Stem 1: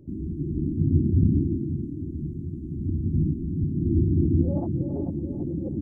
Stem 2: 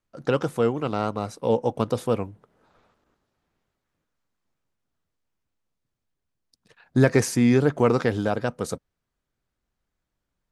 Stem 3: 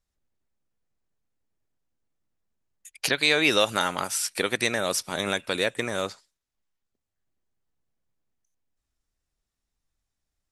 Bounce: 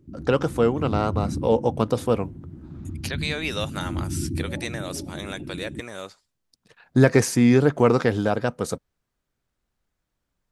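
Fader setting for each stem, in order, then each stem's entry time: -7.0 dB, +2.0 dB, -7.5 dB; 0.00 s, 0.00 s, 0.00 s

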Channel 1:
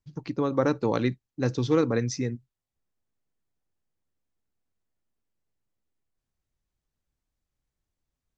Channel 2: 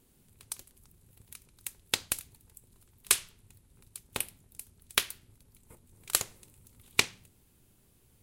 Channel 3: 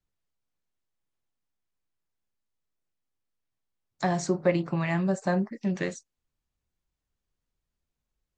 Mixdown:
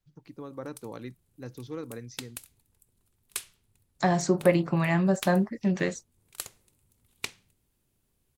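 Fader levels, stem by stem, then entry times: -15.0 dB, -10.0 dB, +2.5 dB; 0.00 s, 0.25 s, 0.00 s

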